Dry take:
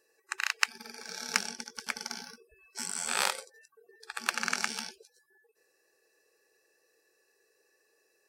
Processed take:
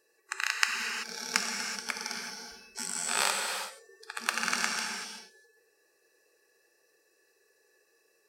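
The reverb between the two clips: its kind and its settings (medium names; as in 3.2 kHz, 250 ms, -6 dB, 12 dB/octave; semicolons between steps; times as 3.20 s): gated-style reverb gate 410 ms flat, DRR 1.5 dB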